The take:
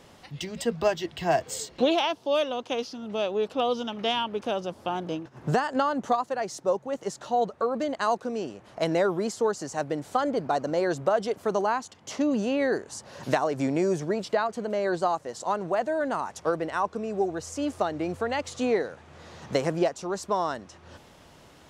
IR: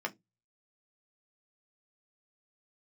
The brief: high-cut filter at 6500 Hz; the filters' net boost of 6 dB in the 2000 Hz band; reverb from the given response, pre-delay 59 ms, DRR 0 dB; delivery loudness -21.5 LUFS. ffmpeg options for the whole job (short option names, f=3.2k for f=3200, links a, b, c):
-filter_complex "[0:a]lowpass=6.5k,equalizer=f=2k:t=o:g=8,asplit=2[a][b];[1:a]atrim=start_sample=2205,adelay=59[c];[b][c]afir=irnorm=-1:irlink=0,volume=-4.5dB[d];[a][d]amix=inputs=2:normalize=0,volume=3dB"